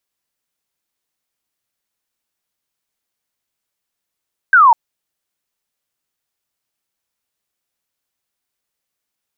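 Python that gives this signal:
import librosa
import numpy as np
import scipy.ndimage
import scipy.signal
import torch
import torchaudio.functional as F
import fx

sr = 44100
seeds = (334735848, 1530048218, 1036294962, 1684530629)

y = fx.laser_zap(sr, level_db=-5, start_hz=1600.0, end_hz=880.0, length_s=0.2, wave='sine')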